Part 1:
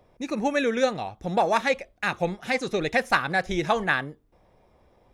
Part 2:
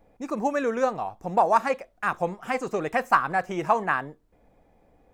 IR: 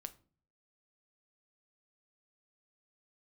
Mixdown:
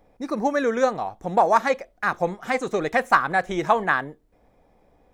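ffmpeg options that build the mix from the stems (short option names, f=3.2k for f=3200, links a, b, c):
-filter_complex "[0:a]equalizer=f=110:t=o:w=1.4:g=-14,bandreject=f=2.8k:w=13,volume=-5.5dB[a];[1:a]volume=0dB[b];[a][b]amix=inputs=2:normalize=0"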